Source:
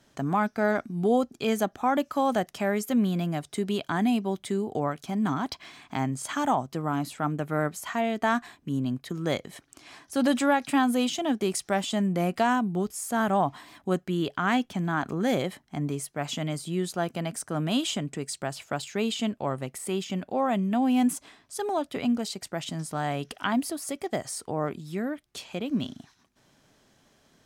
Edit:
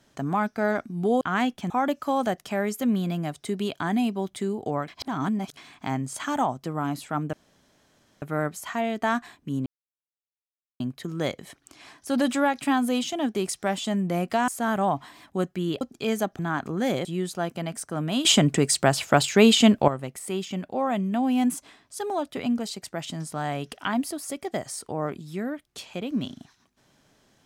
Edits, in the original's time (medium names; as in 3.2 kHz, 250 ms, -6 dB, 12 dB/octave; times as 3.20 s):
1.21–1.79 s: swap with 14.33–14.82 s
4.97–5.66 s: reverse
7.42 s: insert room tone 0.89 s
8.86 s: insert silence 1.14 s
12.54–13.00 s: delete
15.48–16.64 s: delete
17.84–19.47 s: gain +12 dB